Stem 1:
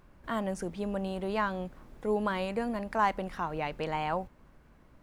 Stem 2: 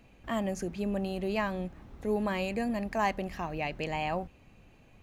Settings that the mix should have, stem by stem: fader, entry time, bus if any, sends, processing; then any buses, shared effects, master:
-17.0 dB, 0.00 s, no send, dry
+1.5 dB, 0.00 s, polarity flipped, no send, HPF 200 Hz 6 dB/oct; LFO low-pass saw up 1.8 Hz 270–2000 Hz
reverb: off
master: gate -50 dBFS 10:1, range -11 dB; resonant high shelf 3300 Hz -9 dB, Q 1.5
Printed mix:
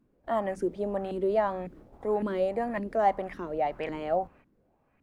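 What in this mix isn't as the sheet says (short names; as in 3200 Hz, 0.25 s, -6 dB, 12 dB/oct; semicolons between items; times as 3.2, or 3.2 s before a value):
stem 1 -17.0 dB -> -7.5 dB; master: missing resonant high shelf 3300 Hz -9 dB, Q 1.5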